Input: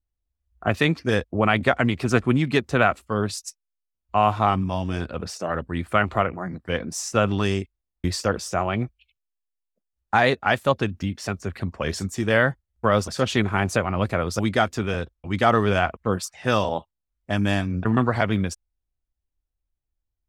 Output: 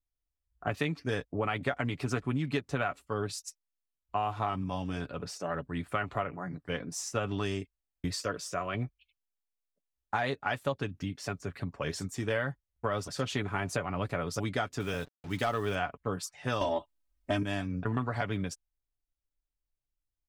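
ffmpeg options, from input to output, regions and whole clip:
ffmpeg -i in.wav -filter_complex "[0:a]asettb=1/sr,asplit=3[link_01][link_02][link_03];[link_01]atrim=end=8.134[link_04];[link_02]atrim=start=8.13:end=8.75,asetpts=PTS-STARTPTS,afade=type=in:duration=0.004:curve=qsin,afade=type=out:start_time=0.616:duration=0.004:curve=qsin,asuperstop=centerf=810:order=4:qfactor=4.3,lowshelf=frequency=260:gain=-5[link_05];[link_03]atrim=start=8.746[link_06];[link_04][link_05]acrossfade=duration=0.004:curve1=hsin:curve2=qsin[link_07];[link_07][link_06]acrossfade=duration=0.004:curve1=qsin:curve2=hsin,asettb=1/sr,asplit=3[link_08][link_09][link_10];[link_08]atrim=end=14.804[link_11];[link_09]atrim=start=14.8:end=15.75,asetpts=PTS-STARTPTS,afade=type=in:duration=0.004:curve=qsin,afade=type=out:start_time=0.946:duration=0.004:curve=qsin,highshelf=frequency=5100:gain=10,acrusher=bits=6:mix=0:aa=0.5,asoftclip=type=hard:threshold=-9dB[link_12];[link_10]atrim=start=15.746[link_13];[link_11][link_12]acrossfade=duration=0.004:curve1=hsin:curve2=qsin[link_14];[link_14][link_13]acrossfade=duration=0.004:curve1=qsin:curve2=hsin,asettb=1/sr,asplit=3[link_15][link_16][link_17];[link_15]atrim=end=16.614[link_18];[link_16]atrim=start=16.61:end=17.43,asetpts=PTS-STARTPTS,afade=type=in:duration=0.004:curve=qsin,afade=type=out:start_time=0.816:duration=0.004:curve=qsin,aecho=1:1:3.2:0.94,atrim=end_sample=36162,acontrast=69[link_19];[link_17]atrim=start=17.426[link_20];[link_18][link_19]acrossfade=duration=0.004:curve1=hsin:curve2=qsin[link_21];[link_21][link_20]acrossfade=duration=0.004:curve1=qsin:curve2=hsin,aecho=1:1:7:0.48,acompressor=threshold=-19dB:ratio=5,volume=-8dB" out.wav

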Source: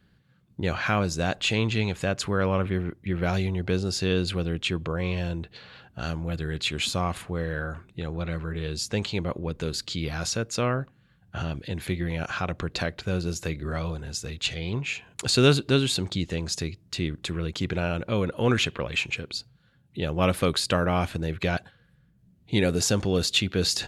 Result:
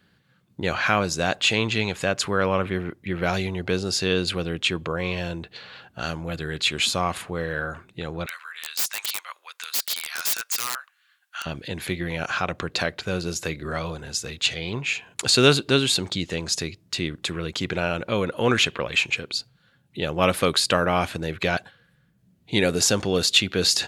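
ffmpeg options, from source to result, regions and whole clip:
ffmpeg -i in.wav -filter_complex "[0:a]asettb=1/sr,asplit=3[link_01][link_02][link_03];[link_01]atrim=end=8.264[link_04];[link_02]atrim=start=8.26:end=11.46,asetpts=PTS-STARTPTS,afade=type=in:duration=0.004:curve=qsin,afade=type=out:start_time=3.196:duration=0.004:curve=qsin,highpass=frequency=1200:width=0.5412,highpass=frequency=1200:width=1.3066,aeval=exprs='(mod(21.1*val(0)+1,2)-1)/21.1':channel_layout=same,highshelf=frequency=6400:gain=5.5[link_05];[link_03]atrim=start=11.456[link_06];[link_04][link_05]acrossfade=duration=0.004:curve1=hsin:curve2=qsin[link_07];[link_07][link_06]acrossfade=duration=0.004:curve1=qsin:curve2=hsin,highpass=frequency=110:poles=1,lowshelf=frequency=380:gain=-6,volume=5.5dB" out.wav

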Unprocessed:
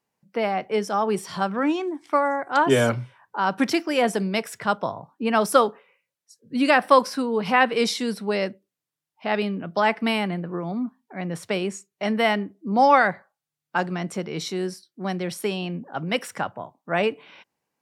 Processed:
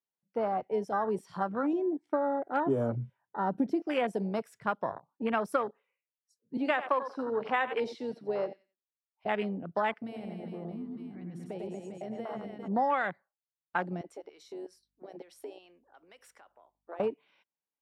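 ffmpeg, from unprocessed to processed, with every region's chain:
ffmpeg -i in.wav -filter_complex "[0:a]asettb=1/sr,asplit=3[link_01][link_02][link_03];[link_01]atrim=end=1.734[link_04];[link_02]atrim=start=1.73:end=3.82,asetpts=PTS-STARTPTS,afade=type=in:duration=0.004:curve=qsin,afade=type=out:start_time=2.086:duration=0.004:curve=qsin,tiltshelf=frequency=780:gain=7,bandreject=frequency=1100:width=5.6[link_05];[link_03]atrim=start=3.816[link_06];[link_04][link_05]acrossfade=duration=0.004:curve1=hsin:curve2=qsin[link_07];[link_07][link_06]acrossfade=duration=0.004:curve1=qsin:curve2=hsin,asettb=1/sr,asplit=3[link_08][link_09][link_10];[link_08]atrim=end=6.574[link_11];[link_09]atrim=start=6.57:end=9.26,asetpts=PTS-STARTPTS,afade=type=in:duration=0.004:curve=qsin,afade=type=out:start_time=2.686:duration=0.004:curve=qsin,acrossover=split=270 5400:gain=0.178 1 0.158[link_12][link_13][link_14];[link_12][link_13][link_14]amix=inputs=3:normalize=0,aecho=1:1:89|178|267:0.224|0.0537|0.0129,atrim=end_sample=118629[link_15];[link_10]atrim=start=9.256[link_16];[link_11][link_15]acrossfade=duration=0.004:curve1=hsin:curve2=qsin[link_17];[link_17][link_16]acrossfade=duration=0.004:curve1=qsin:curve2=hsin,asettb=1/sr,asplit=3[link_18][link_19][link_20];[link_18]atrim=end=9.934[link_21];[link_19]atrim=start=9.93:end=12.68,asetpts=PTS-STARTPTS,afade=type=in:duration=0.004:curve=qsin,afade=type=out:start_time=2.746:duration=0.004:curve=qsin,aecho=1:1:100|230|399|618.7|904.3:0.631|0.398|0.251|0.158|0.1,atrim=end_sample=121275,acompressor=threshold=-30dB:ratio=3:attack=3.2:release=140:knee=1:detection=peak[link_22];[link_20]atrim=start=12.676[link_23];[link_21][link_22]acrossfade=duration=0.004:curve1=hsin:curve2=qsin[link_24];[link_24][link_23]acrossfade=duration=0.004:curve1=qsin:curve2=hsin,asettb=1/sr,asplit=3[link_25][link_26][link_27];[link_25]atrim=end=14.014[link_28];[link_26]atrim=start=14.01:end=17,asetpts=PTS-STARTPTS,afade=type=in:duration=0.004:curve=qsin,afade=type=out:start_time=2.986:duration=0.004:curve=qsin,highpass=frequency=320:width=0.5412,highpass=frequency=320:width=1.3066,acompressor=threshold=-32dB:ratio=5:attack=3.2:release=140:knee=1:detection=peak,aeval=exprs='val(0)+0.000794*(sin(2*PI*50*n/s)+sin(2*PI*2*50*n/s)/2+sin(2*PI*3*50*n/s)/3+sin(2*PI*4*50*n/s)/4+sin(2*PI*5*50*n/s)/5)':channel_layout=same[link_29];[link_27]atrim=start=16.996[link_30];[link_28][link_29]acrossfade=duration=0.004:curve1=hsin:curve2=qsin[link_31];[link_31][link_30]acrossfade=duration=0.004:curve1=qsin:curve2=hsin,afwtdn=0.0501,lowshelf=frequency=230:gain=-5.5,acompressor=threshold=-21dB:ratio=6,volume=-4dB" out.wav

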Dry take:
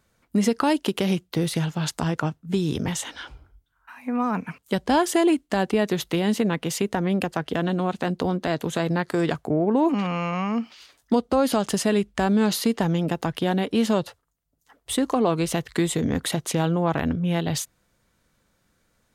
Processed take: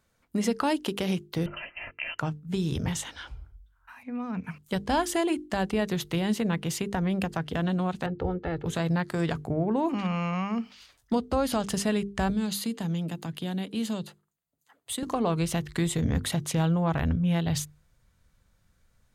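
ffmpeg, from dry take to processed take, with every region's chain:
ffmpeg -i in.wav -filter_complex "[0:a]asettb=1/sr,asplit=3[link_01][link_02][link_03];[link_01]atrim=end=1.464[link_04];[link_02]atrim=start=1.46:end=2.19,asetpts=PTS-STARTPTS,afade=type=in:duration=0.004:curve=qsin,afade=type=out:start_time=0.726:duration=0.004:curve=qsin,highpass=frequency=520:width=0.5412,highpass=frequency=520:width=1.3066,aecho=1:1:2.9:0.51,atrim=end_sample=32193,lowpass=frequency=2900:width_type=q:width=0.5098,lowpass=frequency=2900:width_type=q:width=0.6013,lowpass=frequency=2900:width_type=q:width=0.9,lowpass=frequency=2900:width_type=q:width=2.563,afreqshift=-3400[link_05];[link_03]atrim=start=2.186[link_06];[link_04][link_05]acrossfade=duration=0.004:curve1=hsin:curve2=qsin[link_07];[link_07][link_06]acrossfade=duration=0.004:curve1=qsin:curve2=hsin,asettb=1/sr,asplit=3[link_08][link_09][link_10];[link_08]atrim=end=4.034[link_11];[link_09]atrim=start=4.03:end=4.44,asetpts=PTS-STARTPTS,afade=type=in:duration=0.004:curve=qsin,afade=type=out:start_time=0.406:duration=0.004:curve=qsin,lowpass=4000,equalizer=frequency=1000:width=0.74:gain=-11[link_12];[link_10]atrim=start=4.436[link_13];[link_11][link_12]acrossfade=duration=0.004:curve1=hsin:curve2=qsin[link_14];[link_14][link_13]acrossfade=duration=0.004:curve1=qsin:curve2=hsin,asettb=1/sr,asplit=3[link_15][link_16][link_17];[link_15]atrim=end=8.064[link_18];[link_16]atrim=start=8.06:end=8.66,asetpts=PTS-STARTPTS,afade=type=in:duration=0.004:curve=qsin,afade=type=out:start_time=0.596:duration=0.004:curve=qsin,lowpass=1600,equalizer=frequency=1000:width_type=o:width=0.24:gain=-11.5,aecho=1:1:2.3:0.67,atrim=end_sample=26460[link_19];[link_17]atrim=start=8.656[link_20];[link_18][link_19]acrossfade=duration=0.004:curve1=hsin:curve2=qsin[link_21];[link_21][link_20]acrossfade=duration=0.004:curve1=qsin:curve2=hsin,asettb=1/sr,asplit=3[link_22][link_23][link_24];[link_22]atrim=end=12.304[link_25];[link_23]atrim=start=12.3:end=15.03,asetpts=PTS-STARTPTS,afade=type=in:duration=0.004:curve=qsin,afade=type=out:start_time=2.726:duration=0.004:curve=qsin,highpass=200,bandreject=frequency=5500:width=5.3,acrossover=split=290|3000[link_26][link_27][link_28];[link_27]acompressor=threshold=-50dB:ratio=1.5:attack=3.2:release=140:knee=2.83:detection=peak[link_29];[link_26][link_29][link_28]amix=inputs=3:normalize=0[link_30];[link_24]atrim=start=15.026[link_31];[link_25][link_30]acrossfade=duration=0.004:curve1=hsin:curve2=qsin[link_32];[link_32][link_31]acrossfade=duration=0.004:curve1=qsin:curve2=hsin,bandreject=frequency=50:width_type=h:width=6,bandreject=frequency=100:width_type=h:width=6,bandreject=frequency=150:width_type=h:width=6,bandreject=frequency=200:width_type=h:width=6,bandreject=frequency=250:width_type=h:width=6,bandreject=frequency=300:width_type=h:width=6,bandreject=frequency=350:width_type=h:width=6,bandreject=frequency=400:width_type=h:width=6,bandreject=frequency=450:width_type=h:width=6,asubboost=boost=4.5:cutoff=130,volume=-4dB" out.wav

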